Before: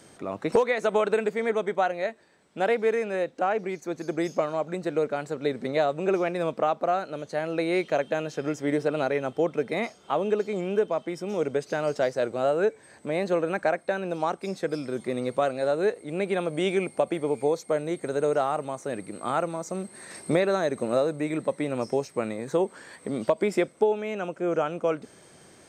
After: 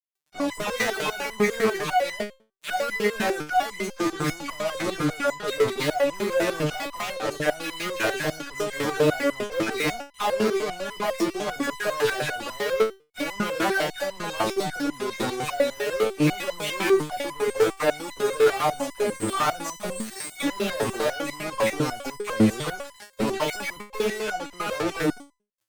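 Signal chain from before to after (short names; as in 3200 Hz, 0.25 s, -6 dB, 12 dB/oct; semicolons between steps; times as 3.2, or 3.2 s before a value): dispersion lows, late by 0.137 s, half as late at 1800 Hz; fuzz box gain 38 dB, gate -42 dBFS; stepped resonator 10 Hz 110–1000 Hz; gain +3.5 dB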